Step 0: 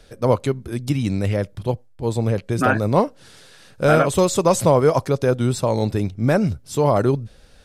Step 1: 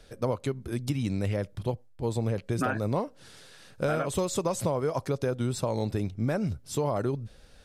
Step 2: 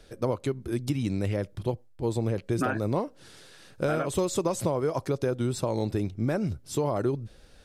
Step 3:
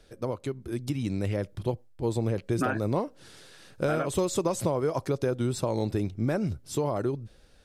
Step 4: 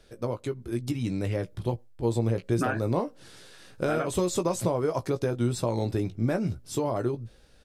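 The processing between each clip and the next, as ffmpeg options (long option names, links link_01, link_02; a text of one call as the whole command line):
ffmpeg -i in.wav -af "acompressor=threshold=-20dB:ratio=6,volume=-4.5dB" out.wav
ffmpeg -i in.wav -af "equalizer=frequency=340:width_type=o:width=0.41:gain=5.5" out.wav
ffmpeg -i in.wav -af "dynaudnorm=framelen=290:gausssize=7:maxgain=4dB,volume=-4dB" out.wav
ffmpeg -i in.wav -filter_complex "[0:a]asplit=2[link_01][link_02];[link_02]adelay=17,volume=-8dB[link_03];[link_01][link_03]amix=inputs=2:normalize=0" out.wav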